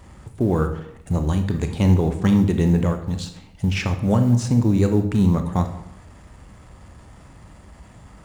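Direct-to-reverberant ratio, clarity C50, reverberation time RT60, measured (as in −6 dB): 6.5 dB, 9.5 dB, 0.75 s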